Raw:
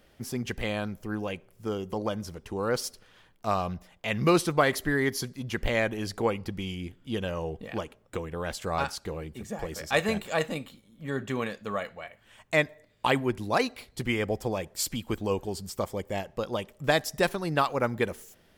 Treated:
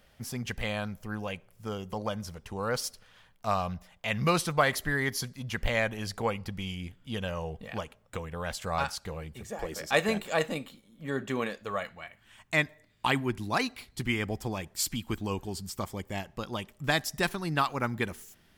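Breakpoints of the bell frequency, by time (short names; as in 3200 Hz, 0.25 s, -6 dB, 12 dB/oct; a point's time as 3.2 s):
bell -10 dB 0.83 oct
9.33 s 340 Hz
9.77 s 85 Hz
11.44 s 85 Hz
11.92 s 520 Hz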